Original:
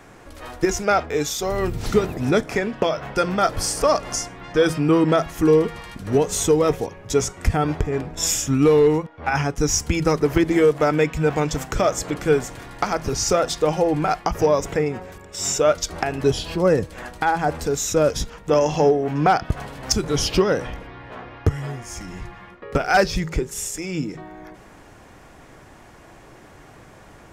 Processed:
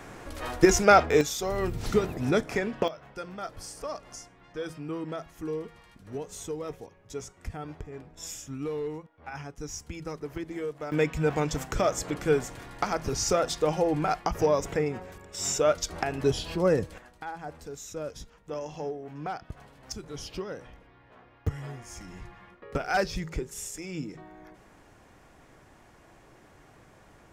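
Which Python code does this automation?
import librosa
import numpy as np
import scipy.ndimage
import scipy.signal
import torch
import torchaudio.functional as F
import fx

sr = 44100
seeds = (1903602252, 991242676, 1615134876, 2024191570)

y = fx.gain(x, sr, db=fx.steps((0.0, 1.5), (1.21, -6.0), (2.88, -18.0), (10.92, -6.0), (16.98, -18.0), (21.47, -9.5)))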